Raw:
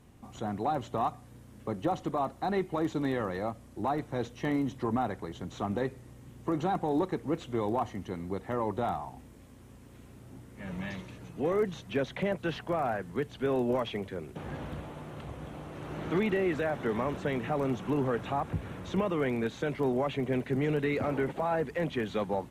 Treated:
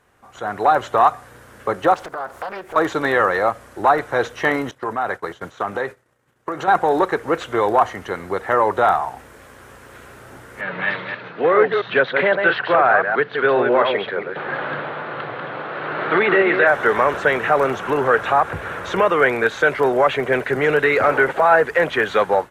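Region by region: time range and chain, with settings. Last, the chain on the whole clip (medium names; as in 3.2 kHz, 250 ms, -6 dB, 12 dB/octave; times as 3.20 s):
1.94–2.76 s: treble shelf 8.8 kHz +10 dB + compression 4:1, threshold -43 dBFS + loudspeaker Doppler distortion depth 0.88 ms
4.71–6.68 s: expander -37 dBFS + high-pass 82 Hz + compression 5:1, threshold -33 dBFS
10.61–16.67 s: chunks repeated in reverse 134 ms, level -5 dB + Chebyshev band-pass 120–4200 Hz, order 4
whole clip: peaking EQ 1.5 kHz +12 dB 0.84 oct; level rider gain up to 13 dB; resonant low shelf 340 Hz -9 dB, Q 1.5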